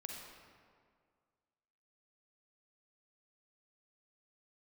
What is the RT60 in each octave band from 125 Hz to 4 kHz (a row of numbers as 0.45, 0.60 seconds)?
2.0, 2.0, 2.0, 2.0, 1.6, 1.2 seconds